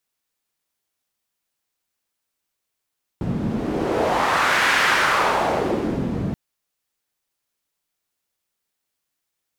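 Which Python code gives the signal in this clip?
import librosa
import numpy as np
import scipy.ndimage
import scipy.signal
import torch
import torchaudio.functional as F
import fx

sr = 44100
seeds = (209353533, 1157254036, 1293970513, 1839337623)

y = fx.wind(sr, seeds[0], length_s=3.13, low_hz=180.0, high_hz=1700.0, q=1.6, gusts=1, swing_db=7.0)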